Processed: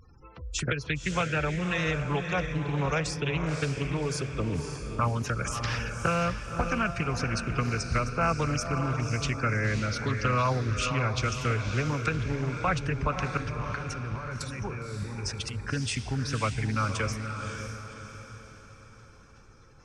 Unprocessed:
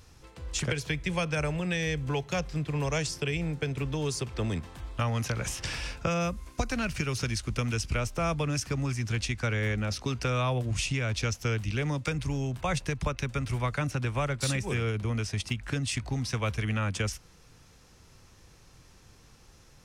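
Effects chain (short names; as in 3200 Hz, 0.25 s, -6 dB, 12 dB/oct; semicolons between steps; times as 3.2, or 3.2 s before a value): spectral gate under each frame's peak -20 dB strong; bell 1300 Hz +7.5 dB 0.94 oct; 13.37–15.62 negative-ratio compressor -36 dBFS, ratio -1; diffused feedback echo 0.556 s, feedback 45%, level -6 dB; Doppler distortion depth 0.32 ms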